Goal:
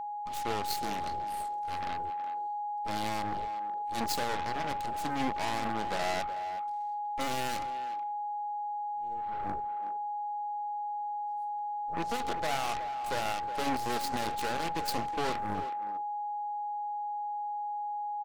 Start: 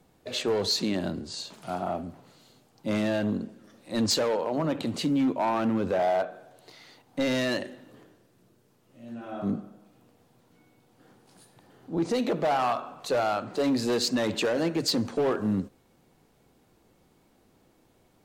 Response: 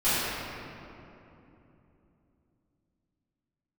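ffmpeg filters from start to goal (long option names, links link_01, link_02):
-filter_complex "[0:a]aeval=exprs='0.126*(cos(1*acos(clip(val(0)/0.126,-1,1)))-cos(1*PI/2))+0.0501*(cos(3*acos(clip(val(0)/0.126,-1,1)))-cos(3*PI/2))+0.0178*(cos(4*acos(clip(val(0)/0.126,-1,1)))-cos(4*PI/2))+0.0355*(cos(6*acos(clip(val(0)/0.126,-1,1)))-cos(6*PI/2))+0.0398*(cos(8*acos(clip(val(0)/0.126,-1,1)))-cos(8*PI/2))':channel_layout=same,aeval=exprs='val(0)+0.0398*sin(2*PI*830*n/s)':channel_layout=same,asplit=2[link_01][link_02];[link_02]adelay=370,highpass=300,lowpass=3400,asoftclip=type=hard:threshold=-23.5dB,volume=-9dB[link_03];[link_01][link_03]amix=inputs=2:normalize=0,volume=-7dB"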